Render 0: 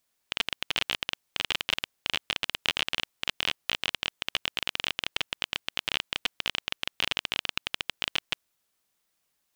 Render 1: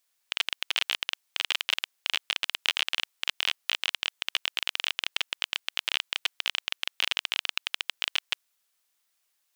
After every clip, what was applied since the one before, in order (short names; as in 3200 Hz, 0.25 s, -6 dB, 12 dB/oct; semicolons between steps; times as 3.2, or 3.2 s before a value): HPF 1200 Hz 6 dB/oct; gain +2 dB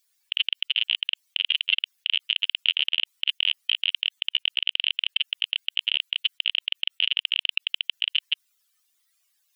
spectral contrast raised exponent 2.8; gain +5 dB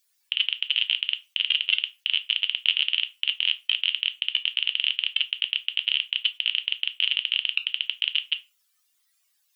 shoebox room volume 140 m³, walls furnished, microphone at 0.57 m